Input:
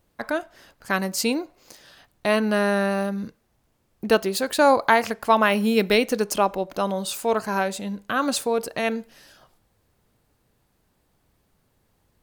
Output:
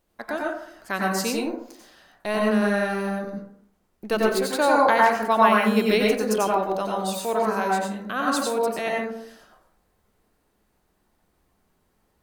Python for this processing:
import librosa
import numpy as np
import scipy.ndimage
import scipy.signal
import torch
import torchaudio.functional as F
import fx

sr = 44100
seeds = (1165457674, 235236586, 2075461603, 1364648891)

y = fx.halfwave_gain(x, sr, db=-3.0, at=(1.34, 4.17))
y = fx.peak_eq(y, sr, hz=110.0, db=-10.0, octaves=1.0)
y = fx.rev_plate(y, sr, seeds[0], rt60_s=0.66, hf_ratio=0.35, predelay_ms=80, drr_db=-3.0)
y = y * librosa.db_to_amplitude(-4.5)